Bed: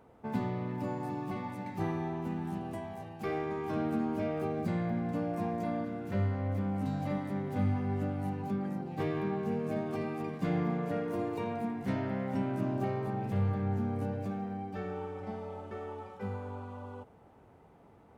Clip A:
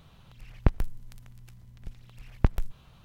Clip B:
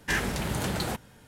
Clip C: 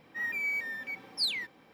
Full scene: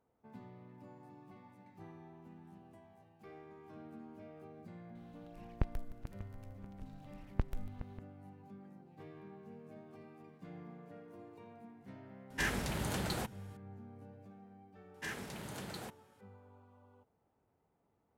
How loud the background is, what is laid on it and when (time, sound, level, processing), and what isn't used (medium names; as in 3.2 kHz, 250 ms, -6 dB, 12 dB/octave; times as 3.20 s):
bed -19.5 dB
4.95 s: add A -11.5 dB + backward echo that repeats 295 ms, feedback 62%, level -13 dB
12.30 s: add B -7 dB
14.94 s: add B -14.5 dB + high-pass 110 Hz
not used: C